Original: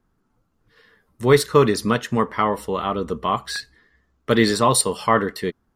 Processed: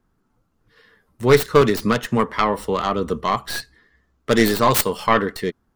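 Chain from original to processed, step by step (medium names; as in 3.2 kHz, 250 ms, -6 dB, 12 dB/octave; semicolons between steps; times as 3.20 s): tracing distortion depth 0.5 ms; 1.61–3.21 s: three bands compressed up and down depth 40%; trim +1 dB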